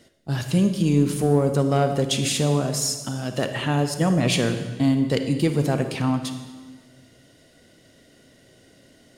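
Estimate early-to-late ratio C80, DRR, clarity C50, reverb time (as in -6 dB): 9.5 dB, 7.0 dB, 8.0 dB, 1.4 s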